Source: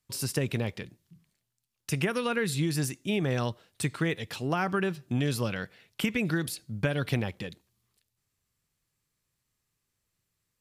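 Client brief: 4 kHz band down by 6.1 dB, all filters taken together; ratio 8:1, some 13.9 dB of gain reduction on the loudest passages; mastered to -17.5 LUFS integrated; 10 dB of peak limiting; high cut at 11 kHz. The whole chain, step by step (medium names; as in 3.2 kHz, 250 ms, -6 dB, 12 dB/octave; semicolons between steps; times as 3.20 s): low-pass 11 kHz; peaking EQ 4 kHz -8.5 dB; compression 8:1, threshold -38 dBFS; trim +27 dB; peak limiter -6 dBFS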